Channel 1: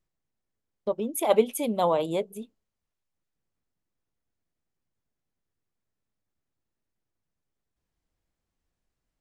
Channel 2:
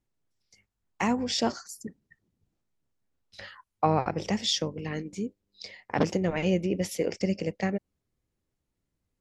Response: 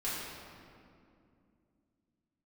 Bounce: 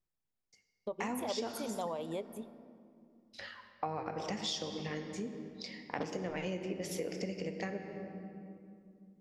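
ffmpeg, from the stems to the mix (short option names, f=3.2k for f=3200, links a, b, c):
-filter_complex "[0:a]volume=-8dB,asplit=2[a][b];[b]volume=-23dB[c];[1:a]agate=range=-33dB:threshold=-56dB:ratio=3:detection=peak,lowshelf=f=170:g=-8.5,volume=-4.5dB,asplit=2[d][e];[e]volume=-9dB[f];[2:a]atrim=start_sample=2205[g];[c][f]amix=inputs=2:normalize=0[h];[h][g]afir=irnorm=-1:irlink=0[i];[a][d][i]amix=inputs=3:normalize=0,acompressor=threshold=-35dB:ratio=4"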